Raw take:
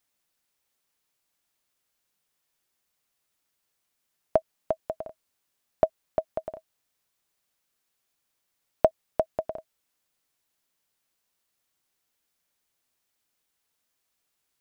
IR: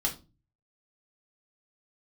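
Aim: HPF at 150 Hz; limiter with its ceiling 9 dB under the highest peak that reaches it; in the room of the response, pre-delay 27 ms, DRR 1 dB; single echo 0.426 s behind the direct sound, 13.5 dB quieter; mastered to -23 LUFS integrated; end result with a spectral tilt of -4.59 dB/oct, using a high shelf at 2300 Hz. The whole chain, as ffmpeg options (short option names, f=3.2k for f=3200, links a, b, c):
-filter_complex "[0:a]highpass=150,highshelf=f=2.3k:g=8.5,alimiter=limit=-12.5dB:level=0:latency=1,aecho=1:1:426:0.211,asplit=2[a][b];[1:a]atrim=start_sample=2205,adelay=27[c];[b][c]afir=irnorm=-1:irlink=0,volume=-6.5dB[d];[a][d]amix=inputs=2:normalize=0,volume=9dB"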